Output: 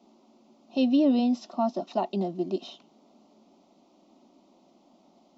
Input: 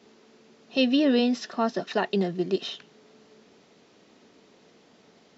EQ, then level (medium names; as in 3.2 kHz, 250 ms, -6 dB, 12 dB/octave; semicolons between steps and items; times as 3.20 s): bass shelf 130 Hz +6.5 dB; peaking EQ 510 Hz +10.5 dB 2.8 oct; static phaser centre 450 Hz, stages 6; -8.0 dB